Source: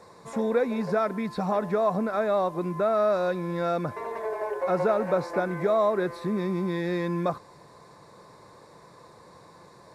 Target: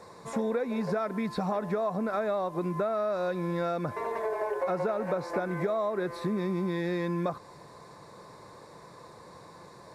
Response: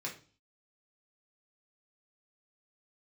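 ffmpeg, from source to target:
-af "acompressor=threshold=-28dB:ratio=6,volume=1.5dB"

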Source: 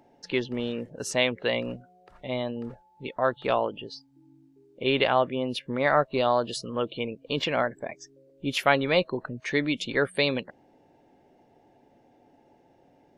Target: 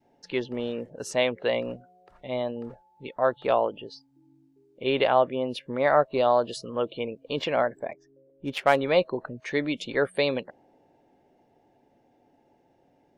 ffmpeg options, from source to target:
ffmpeg -i in.wav -filter_complex "[0:a]asettb=1/sr,asplit=3[link_01][link_02][link_03];[link_01]atrim=end=7.924[link_04];[link_02]atrim=start=7.92:end=8.78,asetpts=PTS-STARTPTS,afade=type=in:duration=0.004:curve=qsin,afade=type=out:start_time=0.856:duration=0.004:curve=qsin,adynamicsmooth=sensitivity=3:basefreq=2000[link_05];[link_03]atrim=start=8.776[link_06];[link_04][link_05]acrossfade=duration=0.004:curve1=hsin:curve2=qsin[link_07];[link_07][link_06]acrossfade=duration=0.004:curve1=qsin:curve2=hsin,adynamicequalizer=threshold=0.0141:dfrequency=620:dqfactor=0.75:tfrequency=620:tqfactor=0.75:attack=5:release=100:ratio=0.375:range=3.5:mode=boostabove:tftype=bell,volume=-4dB" out.wav

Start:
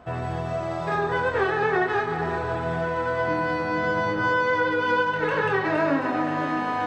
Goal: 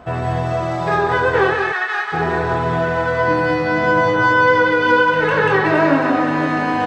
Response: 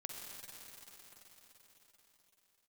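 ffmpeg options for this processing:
-filter_complex "[0:a]asplit=3[link_01][link_02][link_03];[link_01]afade=type=out:start_time=1.53:duration=0.02[link_04];[link_02]highpass=1300,afade=type=in:start_time=1.53:duration=0.02,afade=type=out:start_time=2.12:duration=0.02[link_05];[link_03]afade=type=in:start_time=2.12:duration=0.02[link_06];[link_04][link_05][link_06]amix=inputs=3:normalize=0,asplit=2[link_07][link_08];[link_08]aecho=0:1:186:0.473[link_09];[link_07][link_09]amix=inputs=2:normalize=0,volume=7.5dB"

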